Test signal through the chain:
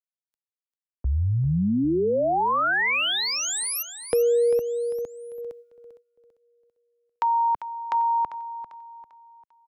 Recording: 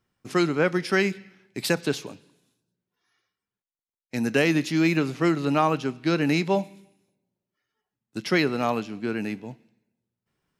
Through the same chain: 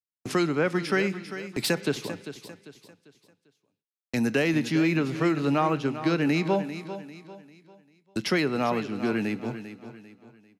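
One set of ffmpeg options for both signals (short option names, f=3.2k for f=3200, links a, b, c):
-filter_complex "[0:a]agate=range=-42dB:threshold=-48dB:ratio=16:detection=peak,asplit=2[a][b];[b]alimiter=limit=-16dB:level=0:latency=1:release=390,volume=-1dB[c];[a][c]amix=inputs=2:normalize=0,acompressor=threshold=-33dB:ratio=1.5,acrossover=split=140|1100[d][e][f];[f]volume=21dB,asoftclip=hard,volume=-21dB[g];[d][e][g]amix=inputs=3:normalize=0,aecho=1:1:396|792|1188|1584:0.251|0.0929|0.0344|0.0127,adynamicequalizer=threshold=0.00794:dfrequency=3500:dqfactor=0.7:tfrequency=3500:tqfactor=0.7:attack=5:release=100:ratio=0.375:range=3:mode=cutabove:tftype=highshelf,volume=1dB"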